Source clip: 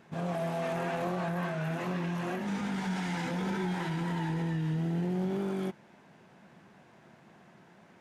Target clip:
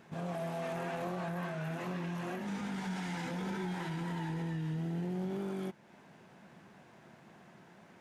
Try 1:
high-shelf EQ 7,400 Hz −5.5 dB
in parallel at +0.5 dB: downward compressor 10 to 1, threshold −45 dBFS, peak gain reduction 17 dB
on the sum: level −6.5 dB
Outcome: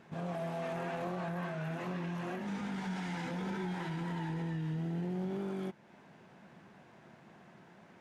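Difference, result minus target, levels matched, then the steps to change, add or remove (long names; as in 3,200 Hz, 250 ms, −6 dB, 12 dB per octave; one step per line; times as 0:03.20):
8,000 Hz band −4.0 dB
change: high-shelf EQ 7,400 Hz +3 dB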